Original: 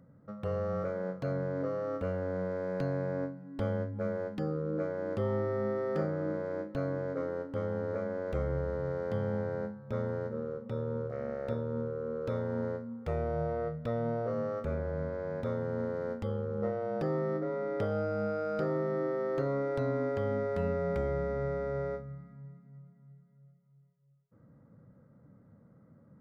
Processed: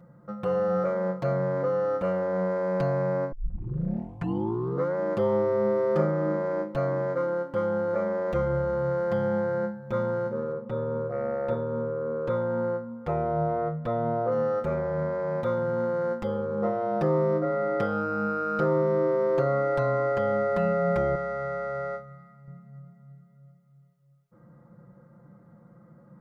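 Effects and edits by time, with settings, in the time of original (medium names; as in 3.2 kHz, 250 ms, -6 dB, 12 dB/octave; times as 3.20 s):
3.32 s: tape start 1.63 s
10.52–14.32 s: treble shelf 3.2 kHz -9 dB
21.15–22.48 s: bass shelf 490 Hz -11 dB
whole clip: peaking EQ 1 kHz +7 dB 1.2 oct; comb 5.7 ms, depth 86%; trim +2.5 dB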